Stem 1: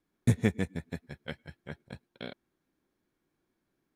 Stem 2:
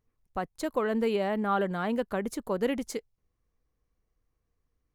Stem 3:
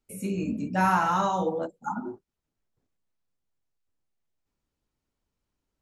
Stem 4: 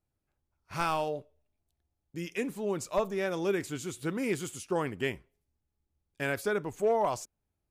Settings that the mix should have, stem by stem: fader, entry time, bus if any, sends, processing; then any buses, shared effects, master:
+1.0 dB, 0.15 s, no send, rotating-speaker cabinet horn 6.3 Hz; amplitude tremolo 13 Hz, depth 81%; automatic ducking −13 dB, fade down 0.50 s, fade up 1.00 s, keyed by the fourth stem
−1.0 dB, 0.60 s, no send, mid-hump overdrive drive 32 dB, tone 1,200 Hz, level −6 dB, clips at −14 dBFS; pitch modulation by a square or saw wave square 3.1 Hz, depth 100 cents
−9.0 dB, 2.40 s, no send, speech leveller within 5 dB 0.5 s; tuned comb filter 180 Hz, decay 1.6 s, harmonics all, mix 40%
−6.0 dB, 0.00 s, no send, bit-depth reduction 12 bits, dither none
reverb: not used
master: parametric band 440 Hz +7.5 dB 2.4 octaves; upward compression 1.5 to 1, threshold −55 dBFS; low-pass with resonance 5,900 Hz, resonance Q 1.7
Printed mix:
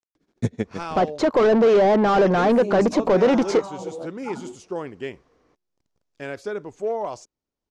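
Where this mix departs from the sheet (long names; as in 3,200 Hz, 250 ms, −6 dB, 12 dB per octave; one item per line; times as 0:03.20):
stem 1 +1.0 dB → +7.5 dB
stem 2: missing pitch modulation by a square or saw wave square 3.1 Hz, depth 100 cents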